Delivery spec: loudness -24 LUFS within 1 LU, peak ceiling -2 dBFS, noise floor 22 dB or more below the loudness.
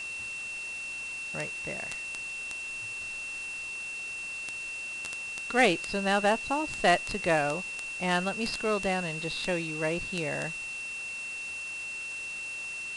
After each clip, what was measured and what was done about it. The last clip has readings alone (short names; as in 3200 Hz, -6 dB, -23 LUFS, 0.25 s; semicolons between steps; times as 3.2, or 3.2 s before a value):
steady tone 2700 Hz; tone level -35 dBFS; noise floor -38 dBFS; noise floor target -53 dBFS; loudness -31.0 LUFS; peak -10.5 dBFS; loudness target -24.0 LUFS
-> notch 2700 Hz, Q 30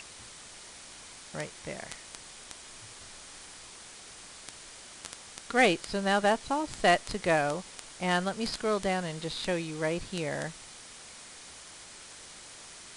steady tone none; noise floor -49 dBFS; noise floor target -52 dBFS
-> noise print and reduce 6 dB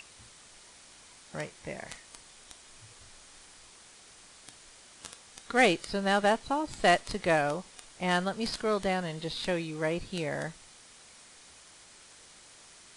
noise floor -55 dBFS; loudness -30.0 LUFS; peak -11.0 dBFS; loudness target -24.0 LUFS
-> gain +6 dB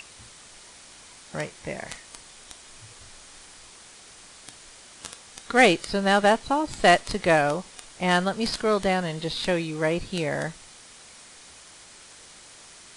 loudness -24.0 LUFS; peak -4.5 dBFS; noise floor -49 dBFS